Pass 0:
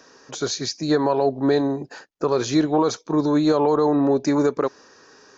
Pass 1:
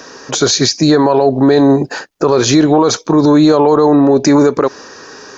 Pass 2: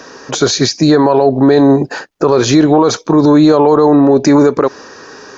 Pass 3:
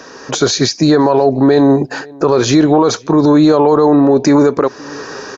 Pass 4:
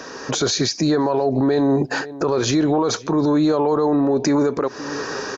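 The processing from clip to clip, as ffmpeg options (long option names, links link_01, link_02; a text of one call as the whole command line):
ffmpeg -i in.wav -af "alimiter=level_in=17.5dB:limit=-1dB:release=50:level=0:latency=1,volume=-1dB" out.wav
ffmpeg -i in.wav -af "highshelf=frequency=4200:gain=-5.5,volume=1dB" out.wav
ffmpeg -i in.wav -filter_complex "[0:a]asplit=2[link_01][link_02];[link_02]adelay=524.8,volume=-26dB,highshelf=frequency=4000:gain=-11.8[link_03];[link_01][link_03]amix=inputs=2:normalize=0,dynaudnorm=framelen=130:gausssize=3:maxgain=6.5dB,volume=-1dB" out.wav
ffmpeg -i in.wav -af "alimiter=limit=-11dB:level=0:latency=1:release=98" out.wav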